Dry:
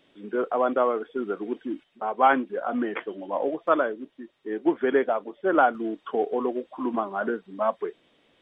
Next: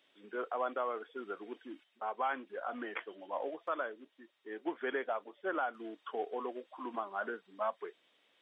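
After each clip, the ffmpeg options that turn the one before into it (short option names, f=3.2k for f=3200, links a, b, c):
-af "highpass=f=1.1k:p=1,alimiter=limit=-20dB:level=0:latency=1:release=160,volume=-4.5dB"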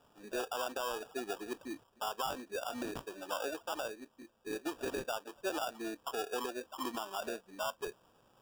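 -af "alimiter=level_in=8.5dB:limit=-24dB:level=0:latency=1:release=183,volume=-8.5dB,acrusher=samples=21:mix=1:aa=0.000001,volume=4.5dB"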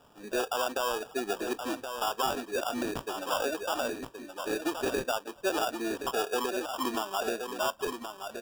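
-af "aecho=1:1:1073:0.422,volume=7dB"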